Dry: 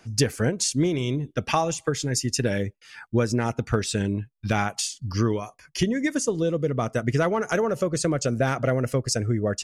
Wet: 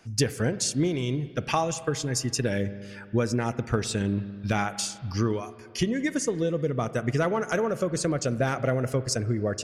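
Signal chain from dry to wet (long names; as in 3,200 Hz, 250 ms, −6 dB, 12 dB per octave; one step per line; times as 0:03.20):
spring reverb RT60 2 s, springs 40/55 ms, chirp 50 ms, DRR 13.5 dB
level −2.5 dB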